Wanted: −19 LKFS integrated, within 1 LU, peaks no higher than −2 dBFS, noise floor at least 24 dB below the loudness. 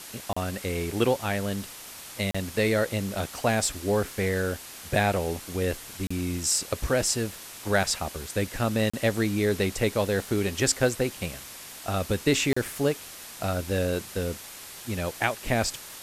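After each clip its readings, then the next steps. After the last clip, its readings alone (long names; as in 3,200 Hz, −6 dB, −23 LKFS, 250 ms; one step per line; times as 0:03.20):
number of dropouts 5; longest dropout 35 ms; background noise floor −43 dBFS; target noise floor −52 dBFS; integrated loudness −27.5 LKFS; sample peak −7.5 dBFS; target loudness −19.0 LKFS
→ repair the gap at 0:00.33/0:02.31/0:06.07/0:08.90/0:12.53, 35 ms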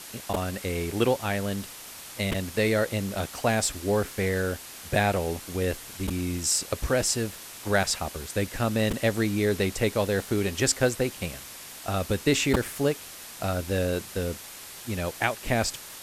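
number of dropouts 0; background noise floor −43 dBFS; target noise floor −52 dBFS
→ broadband denoise 9 dB, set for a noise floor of −43 dBFS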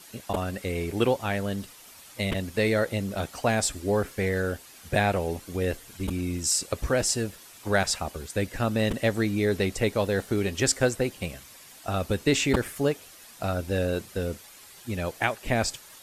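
background noise floor −49 dBFS; target noise floor −52 dBFS
→ broadband denoise 6 dB, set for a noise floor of −49 dBFS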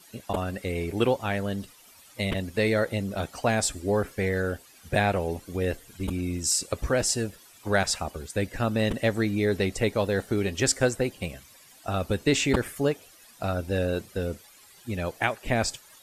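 background noise floor −54 dBFS; integrated loudness −27.5 LKFS; sample peak −7.5 dBFS; target loudness −19.0 LKFS
→ level +8.5 dB
brickwall limiter −2 dBFS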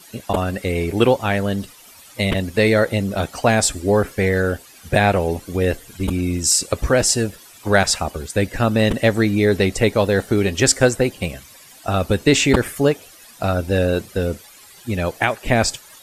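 integrated loudness −19.0 LKFS; sample peak −2.0 dBFS; background noise floor −45 dBFS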